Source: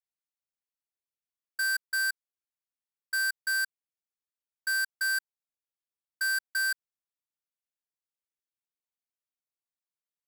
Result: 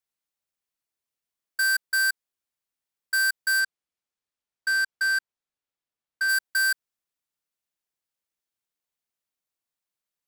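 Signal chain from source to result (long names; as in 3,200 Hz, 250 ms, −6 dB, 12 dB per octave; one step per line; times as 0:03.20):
0:03.59–0:06.28: high-shelf EQ 11,000 Hz → 6,000 Hz −12 dB
level +5.5 dB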